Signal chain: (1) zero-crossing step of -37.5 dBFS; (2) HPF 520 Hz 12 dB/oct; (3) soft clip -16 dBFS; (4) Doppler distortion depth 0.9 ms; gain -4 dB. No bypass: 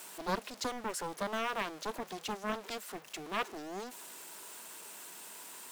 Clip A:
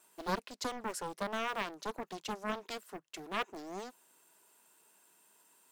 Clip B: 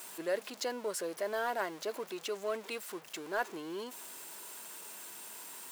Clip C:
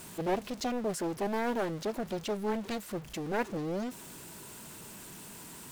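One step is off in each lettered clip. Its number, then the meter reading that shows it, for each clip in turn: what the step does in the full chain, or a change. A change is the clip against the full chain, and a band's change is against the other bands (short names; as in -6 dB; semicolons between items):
1, distortion -15 dB; 4, 125 Hz band -8.5 dB; 2, 125 Hz band +9.5 dB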